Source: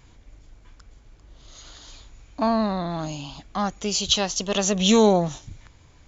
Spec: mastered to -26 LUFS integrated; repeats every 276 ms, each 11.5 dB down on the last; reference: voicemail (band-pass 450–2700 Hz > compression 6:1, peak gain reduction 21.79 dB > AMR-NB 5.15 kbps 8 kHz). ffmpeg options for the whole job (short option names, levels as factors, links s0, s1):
-af "highpass=450,lowpass=2700,aecho=1:1:276|552|828:0.266|0.0718|0.0194,acompressor=threshold=0.01:ratio=6,volume=9.44" -ar 8000 -c:a libopencore_amrnb -b:a 5150